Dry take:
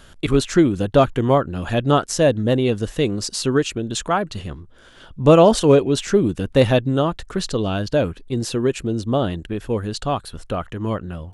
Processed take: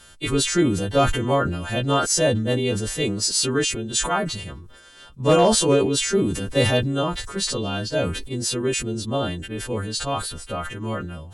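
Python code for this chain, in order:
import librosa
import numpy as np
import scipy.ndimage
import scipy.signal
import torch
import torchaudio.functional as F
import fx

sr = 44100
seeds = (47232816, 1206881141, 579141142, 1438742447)

y = fx.freq_snap(x, sr, grid_st=2)
y = np.clip(y, -10.0 ** (-4.0 / 20.0), 10.0 ** (-4.0 / 20.0))
y = fx.sustainer(y, sr, db_per_s=50.0)
y = y * 10.0 ** (-4.5 / 20.0)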